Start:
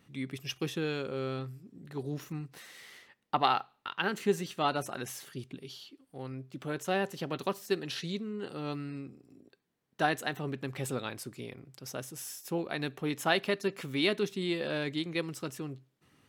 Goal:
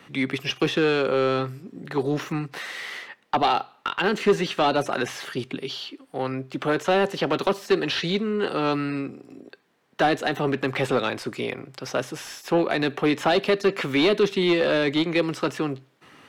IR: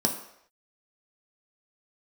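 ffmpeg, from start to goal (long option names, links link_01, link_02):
-filter_complex "[0:a]apsyclip=12dB,acrossover=split=200|600|3400[link_01][link_02][link_03][link_04];[link_03]acompressor=threshold=-29dB:ratio=6[link_05];[link_01][link_02][link_05][link_04]amix=inputs=4:normalize=0,asplit=2[link_06][link_07];[link_07]highpass=frequency=720:poles=1,volume=21dB,asoftclip=type=tanh:threshold=-2.5dB[link_08];[link_06][link_08]amix=inputs=2:normalize=0,lowpass=frequency=2100:poles=1,volume=-6dB,acrossover=split=5200[link_09][link_10];[link_10]acompressor=threshold=-40dB:ratio=4:attack=1:release=60[link_11];[link_09][link_11]amix=inputs=2:normalize=0,volume=-6dB"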